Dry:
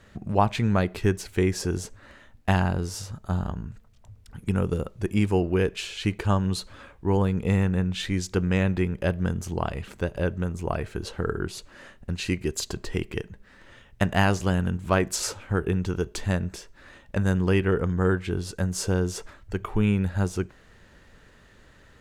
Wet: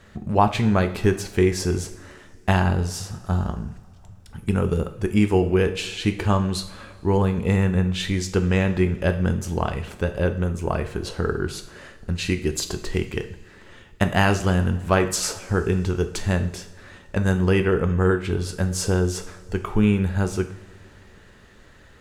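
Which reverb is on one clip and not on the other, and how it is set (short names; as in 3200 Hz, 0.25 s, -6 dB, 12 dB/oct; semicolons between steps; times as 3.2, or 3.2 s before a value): two-slope reverb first 0.52 s, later 2.9 s, from -19 dB, DRR 7 dB; gain +3 dB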